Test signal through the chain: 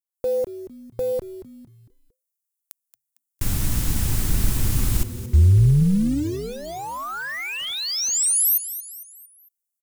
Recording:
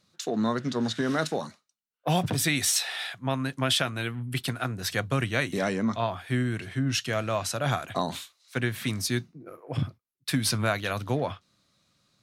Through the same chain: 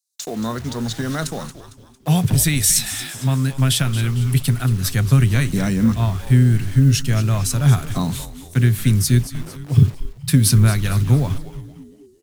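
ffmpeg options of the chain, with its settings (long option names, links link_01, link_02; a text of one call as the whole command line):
ffmpeg -i in.wav -filter_complex "[0:a]asubboost=boost=9.5:cutoff=170,acrossover=split=6900[link_01][link_02];[link_01]acrusher=bits=6:mix=0:aa=0.000001[link_03];[link_02]dynaudnorm=framelen=110:gausssize=3:maxgain=11dB[link_04];[link_03][link_04]amix=inputs=2:normalize=0,tremolo=f=280:d=0.182,asplit=5[link_05][link_06][link_07][link_08][link_09];[link_06]adelay=227,afreqshift=-130,volume=-13dB[link_10];[link_07]adelay=454,afreqshift=-260,volume=-20.1dB[link_11];[link_08]adelay=681,afreqshift=-390,volume=-27.3dB[link_12];[link_09]adelay=908,afreqshift=-520,volume=-34.4dB[link_13];[link_05][link_10][link_11][link_12][link_13]amix=inputs=5:normalize=0,volume=2.5dB" out.wav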